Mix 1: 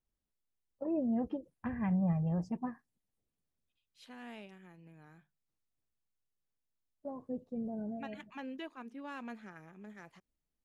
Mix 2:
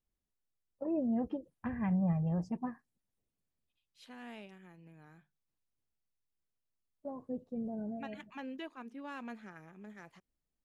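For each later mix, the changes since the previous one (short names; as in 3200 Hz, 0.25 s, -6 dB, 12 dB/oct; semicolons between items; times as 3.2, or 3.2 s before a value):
none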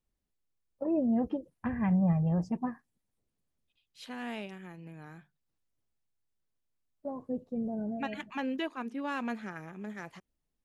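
first voice +4.5 dB; second voice +9.5 dB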